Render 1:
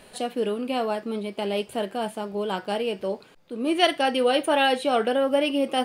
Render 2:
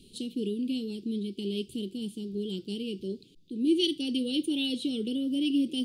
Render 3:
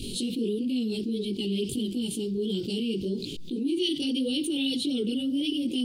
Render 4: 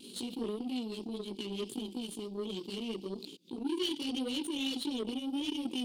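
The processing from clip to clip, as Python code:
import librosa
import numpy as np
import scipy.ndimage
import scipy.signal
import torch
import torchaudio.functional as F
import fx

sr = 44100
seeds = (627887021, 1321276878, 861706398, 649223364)

y1 = scipy.signal.sosfilt(scipy.signal.ellip(3, 1.0, 40, [350.0, 3300.0], 'bandstop', fs=sr, output='sos'), x)
y1 = fx.high_shelf(y1, sr, hz=6500.0, db=-10.0)
y1 = F.gain(torch.from_numpy(y1), 1.0).numpy()
y2 = fx.chorus_voices(y1, sr, voices=2, hz=1.5, base_ms=19, depth_ms=3.0, mix_pct=60)
y2 = fx.env_flatten(y2, sr, amount_pct=70)
y3 = scipy.signal.sosfilt(scipy.signal.butter(4, 200.0, 'highpass', fs=sr, output='sos'), y2)
y3 = fx.cheby_harmonics(y3, sr, harmonics=(3, 5, 7), levels_db=(-17, -19, -19), full_scale_db=-15.0)
y3 = fx.vibrato(y3, sr, rate_hz=0.63, depth_cents=11.0)
y3 = F.gain(torch.from_numpy(y3), -4.5).numpy()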